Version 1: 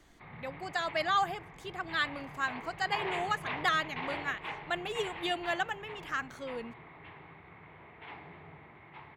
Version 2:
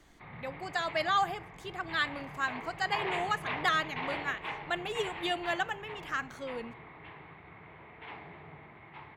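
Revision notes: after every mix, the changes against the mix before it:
reverb: on, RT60 0.60 s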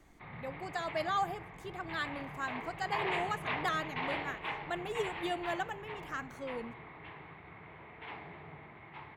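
speech: add peaking EQ 2.8 kHz -8.5 dB 2.9 oct

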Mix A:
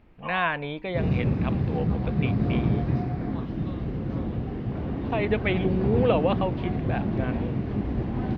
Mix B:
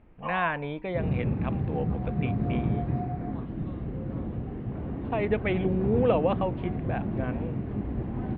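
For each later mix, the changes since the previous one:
first sound +3.5 dB; second sound -3.5 dB; master: add distance through air 360 m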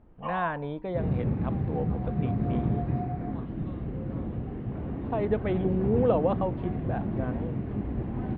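speech: add peaking EQ 2.4 kHz -13 dB 0.86 oct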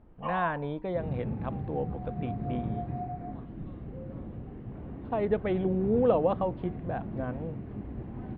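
second sound -7.5 dB

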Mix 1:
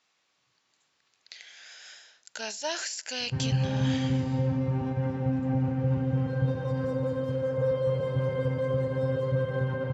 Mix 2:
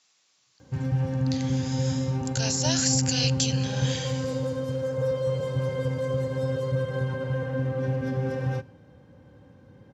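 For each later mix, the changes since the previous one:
background: entry -2.60 s; master: add tone controls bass +1 dB, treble +13 dB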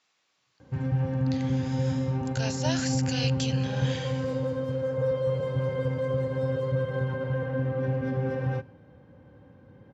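master: add tone controls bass -1 dB, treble -13 dB

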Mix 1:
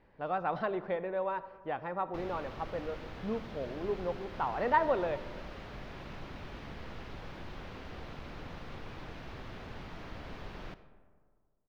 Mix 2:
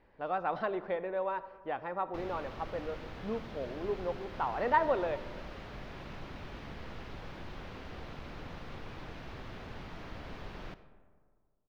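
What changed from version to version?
speech: add peaking EQ 150 Hz -6 dB 0.85 oct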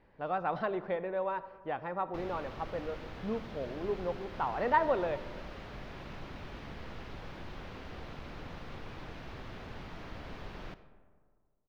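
speech: add peaking EQ 150 Hz +6 dB 0.85 oct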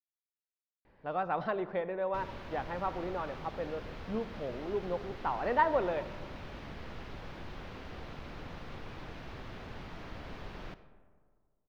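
speech: entry +0.85 s

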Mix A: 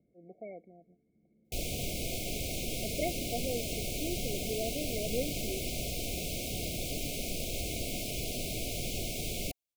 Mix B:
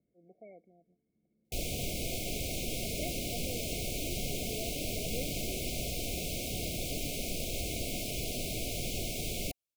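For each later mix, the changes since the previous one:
speech -7.5 dB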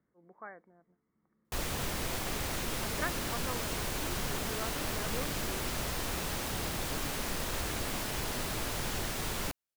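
master: remove brick-wall FIR band-stop 750–2100 Hz

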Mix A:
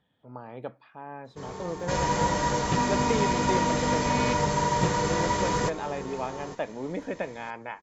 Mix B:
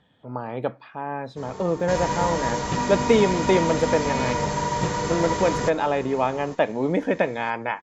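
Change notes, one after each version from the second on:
speech +10.5 dB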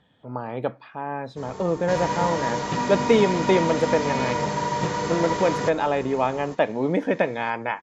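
second sound: add band-pass 120–6200 Hz

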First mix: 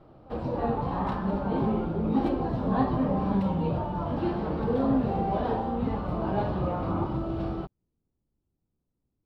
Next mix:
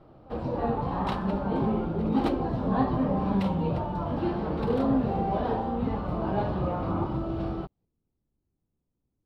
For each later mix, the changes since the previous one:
second sound +10.5 dB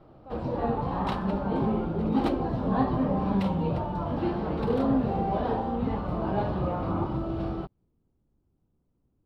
speech +8.0 dB

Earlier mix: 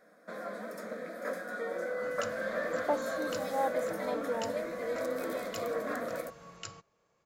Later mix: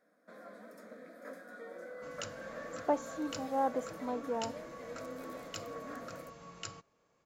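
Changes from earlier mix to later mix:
first sound -11.5 dB; master: add peaking EQ 270 Hz +8 dB 0.28 oct

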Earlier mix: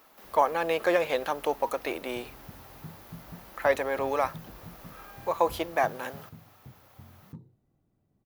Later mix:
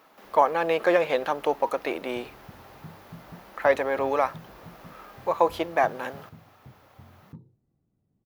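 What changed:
speech +3.5 dB; first sound -5.5 dB; master: add treble shelf 5.7 kHz -11.5 dB

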